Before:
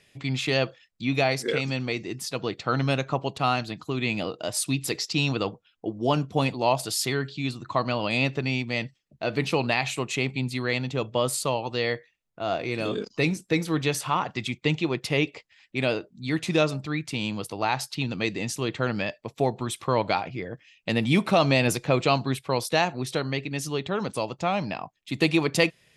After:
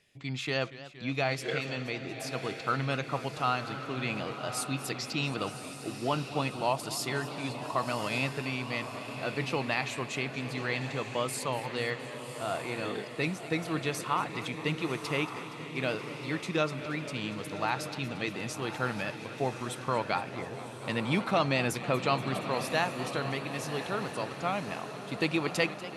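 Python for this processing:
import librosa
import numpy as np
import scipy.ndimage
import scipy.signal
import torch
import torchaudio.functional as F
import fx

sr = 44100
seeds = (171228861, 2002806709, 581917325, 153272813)

y = fx.echo_diffused(x, sr, ms=1116, feedback_pct=49, wet_db=-9)
y = fx.dynamic_eq(y, sr, hz=1400.0, q=1.3, threshold_db=-42.0, ratio=4.0, max_db=6)
y = fx.echo_warbled(y, sr, ms=236, feedback_pct=78, rate_hz=2.8, cents=148, wet_db=-16)
y = y * librosa.db_to_amplitude(-8.0)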